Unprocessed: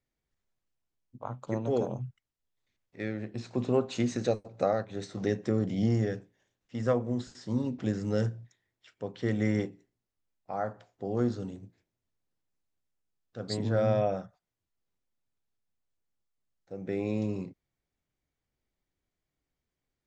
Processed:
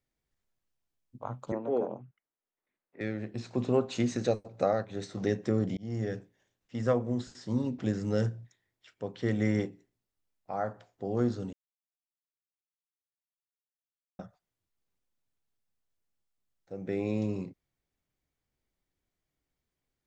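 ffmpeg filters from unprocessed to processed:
-filter_complex "[0:a]asettb=1/sr,asplit=3[s0][s1][s2];[s0]atrim=end=1.524[s3];[s1]atrim=start=1.52:end=3.01,asetpts=PTS-STARTPTS,afade=t=in:d=0.004:c=qsin,afade=t=out:st=1.486:d=0.004:c=qsin,acrossover=split=210 2300:gain=0.0794 1 0.0708[s4][s5][s6];[s4][s5][s6]amix=inputs=3:normalize=0[s7];[s2]atrim=start=3.006[s8];[s3][s7]acrossfade=d=0.004:c1=hsin:c2=qsin[s9];[s9][s8]acrossfade=d=0.004:c1=qsin:c2=hsin,asplit=4[s10][s11][s12][s13];[s10]atrim=end=5.77,asetpts=PTS-STARTPTS,afade=t=out:st=5.766:d=0.004:c=hsin[s14];[s11]atrim=start=5.77:end=11.53,asetpts=PTS-STARTPTS,afade=t=in:d=0.41,afade=t=out:st=5.756:d=0.004:c=hsin[s15];[s12]atrim=start=11.53:end=14.19,asetpts=PTS-STARTPTS,volume=0[s16];[s13]atrim=start=14.19,asetpts=PTS-STARTPTS,afade=t=in:d=0.004:c=hsin[s17];[s14][s15][s16][s17]concat=n=4:v=0:a=1"

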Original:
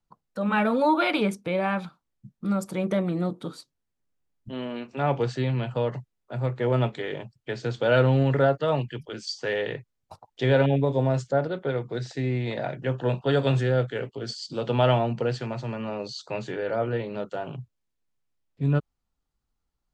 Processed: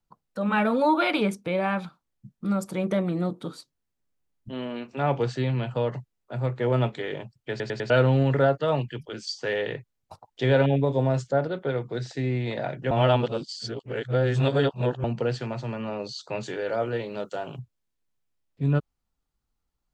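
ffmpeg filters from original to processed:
-filter_complex "[0:a]asettb=1/sr,asplit=3[s0][s1][s2];[s0]atrim=end=16.434[s3];[s1]atrim=start=16.43:end=17.59,asetpts=PTS-STARTPTS,afade=t=in:d=0.004:c=qsin,afade=t=out:st=1.156:d=0.004:c=qsin,bass=f=250:g=-4,treble=f=4000:g=9[s4];[s2]atrim=start=17.586[s5];[s3][s4]acrossfade=d=0.004:c1=hsin:c2=qsin[s6];[s6][s5]acrossfade=d=0.004:c1=qsin:c2=hsin,asplit=7[s7][s8][s9][s10][s11][s12][s13];[s7]atrim=end=7.602[s14];[s8]atrim=start=7.498:end=7.602[s15];[s9]atrim=start=7.498:end=7.602[s16];[s10]atrim=start=7.498:end=7.602[s17];[s11]atrim=start=7.898:end=12.912[s18];[s12]atrim=start=12.908:end=15.042,asetpts=PTS-STARTPTS,areverse[s19];[s13]atrim=start=15.038[s20];[s14][s15]acrossfade=d=0.004:c1=hsin:c2=hsin[s21];[s21][s16]acrossfade=d=0.004:c1=hsin:c2=hsin[s22];[s22][s17]acrossfade=d=0.004:c1=hsin:c2=hsin[s23];[s23][s18]acrossfade=d=0.004:c1=hsin:c2=hsin[s24];[s24][s19]acrossfade=d=0.004:c1=hsin:c2=hsin[s25];[s25][s20]acrossfade=d=0.004:c1=hsin:c2=hsin"

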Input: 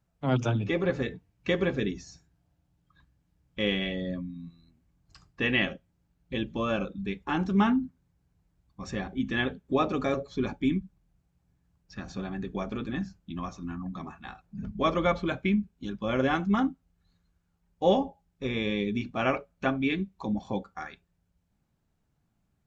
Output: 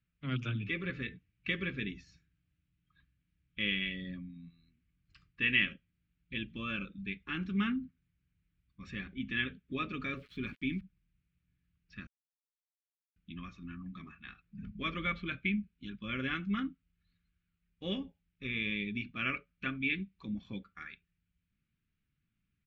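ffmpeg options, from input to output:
-filter_complex "[0:a]asettb=1/sr,asplit=3[s0][s1][s2];[s0]atrim=end=10.164[s3];[s1]atrim=start=10.16:end=10.81,asetpts=PTS-STARTPTS,afade=t=in:d=0.004:c=qsin,afade=t=out:st=0.646:d=0.004:c=qsin,aeval=exprs='val(0)*gte(abs(val(0)),0.00398)':c=same[s4];[s2]atrim=start=10.806[s5];[s3][s4]acrossfade=d=0.004:c1=hsin:c2=qsin[s6];[s6][s5]acrossfade=d=0.004:c1=qsin:c2=hsin,asplit=3[s7][s8][s9];[s7]atrim=end=12.07,asetpts=PTS-STARTPTS,afade=t=out:st=12.066:d=0.004:c=hsin[s10];[s8]atrim=start=12.07:end=13.16,asetpts=PTS-STARTPTS,volume=0[s11];[s9]atrim=start=13.16,asetpts=PTS-STARTPTS,afade=t=in:d=0.004:c=hsin[s12];[s10][s11][s12]concat=n=3:v=0:a=1,firequalizer=gain_entry='entry(220,0);entry(810,-23);entry(1200,-1);entry(2400,10);entry(6200,-12)':delay=0.05:min_phase=1,volume=0.398"

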